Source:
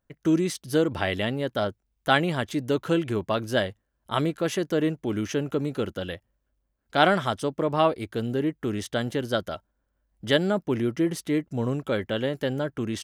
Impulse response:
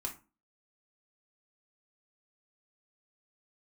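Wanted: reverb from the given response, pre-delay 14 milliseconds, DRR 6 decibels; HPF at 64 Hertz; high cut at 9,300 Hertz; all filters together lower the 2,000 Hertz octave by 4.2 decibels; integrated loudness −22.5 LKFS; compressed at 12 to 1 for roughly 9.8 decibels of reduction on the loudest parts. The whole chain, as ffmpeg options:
-filter_complex "[0:a]highpass=64,lowpass=9300,equalizer=frequency=2000:width_type=o:gain=-6,acompressor=threshold=-26dB:ratio=12,asplit=2[link_01][link_02];[1:a]atrim=start_sample=2205,adelay=14[link_03];[link_02][link_03]afir=irnorm=-1:irlink=0,volume=-6.5dB[link_04];[link_01][link_04]amix=inputs=2:normalize=0,volume=9.5dB"

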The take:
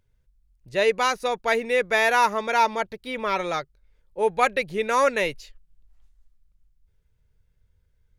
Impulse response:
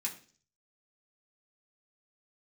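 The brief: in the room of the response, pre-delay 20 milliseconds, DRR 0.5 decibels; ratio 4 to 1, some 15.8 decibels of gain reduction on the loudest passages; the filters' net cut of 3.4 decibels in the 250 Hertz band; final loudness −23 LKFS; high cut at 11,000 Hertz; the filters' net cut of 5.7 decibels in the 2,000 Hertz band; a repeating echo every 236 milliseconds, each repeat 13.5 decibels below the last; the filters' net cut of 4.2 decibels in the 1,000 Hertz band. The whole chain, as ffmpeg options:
-filter_complex "[0:a]lowpass=11000,equalizer=frequency=250:width_type=o:gain=-4,equalizer=frequency=1000:width_type=o:gain=-3.5,equalizer=frequency=2000:width_type=o:gain=-6,acompressor=threshold=-38dB:ratio=4,aecho=1:1:236|472:0.211|0.0444,asplit=2[link_01][link_02];[1:a]atrim=start_sample=2205,adelay=20[link_03];[link_02][link_03]afir=irnorm=-1:irlink=0,volume=-1.5dB[link_04];[link_01][link_04]amix=inputs=2:normalize=0,volume=15dB"

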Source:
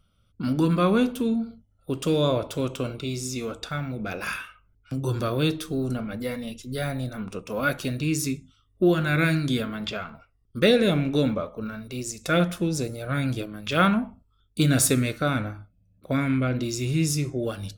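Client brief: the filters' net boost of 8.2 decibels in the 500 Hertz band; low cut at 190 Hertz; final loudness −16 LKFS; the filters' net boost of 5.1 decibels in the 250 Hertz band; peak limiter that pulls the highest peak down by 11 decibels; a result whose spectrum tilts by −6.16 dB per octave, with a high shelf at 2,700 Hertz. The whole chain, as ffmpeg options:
ffmpeg -i in.wav -af "highpass=190,equalizer=frequency=250:width_type=o:gain=5.5,equalizer=frequency=500:width_type=o:gain=8.5,highshelf=frequency=2700:gain=-5,volume=8dB,alimiter=limit=-5dB:level=0:latency=1" out.wav

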